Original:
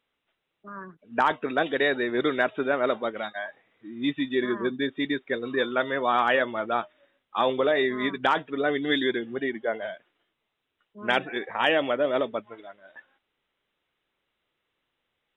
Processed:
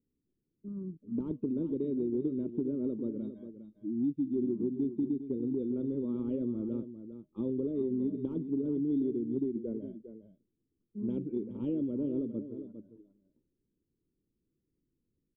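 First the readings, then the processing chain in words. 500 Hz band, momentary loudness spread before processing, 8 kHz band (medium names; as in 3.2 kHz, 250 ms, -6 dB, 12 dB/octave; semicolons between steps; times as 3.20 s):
-11.0 dB, 13 LU, no reading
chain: inverse Chebyshev low-pass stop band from 670 Hz, stop band 40 dB; compression 4:1, threshold -37 dBFS, peak gain reduction 12 dB; delay 405 ms -11 dB; trim +7 dB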